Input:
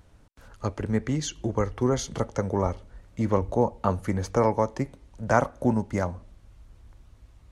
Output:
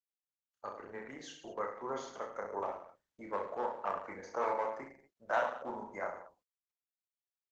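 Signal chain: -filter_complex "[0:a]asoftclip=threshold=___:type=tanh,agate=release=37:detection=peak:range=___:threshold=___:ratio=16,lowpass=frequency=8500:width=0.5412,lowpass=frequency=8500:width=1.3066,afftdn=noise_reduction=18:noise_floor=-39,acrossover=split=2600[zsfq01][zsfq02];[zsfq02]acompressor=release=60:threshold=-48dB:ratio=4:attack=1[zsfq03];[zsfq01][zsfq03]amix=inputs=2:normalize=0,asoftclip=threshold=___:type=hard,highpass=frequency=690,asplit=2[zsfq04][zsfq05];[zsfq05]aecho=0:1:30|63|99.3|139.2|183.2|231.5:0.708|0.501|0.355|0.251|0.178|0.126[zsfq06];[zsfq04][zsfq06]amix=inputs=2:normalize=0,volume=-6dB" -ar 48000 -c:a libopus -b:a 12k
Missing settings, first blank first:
-13.5dB, -47dB, -45dB, -15.5dB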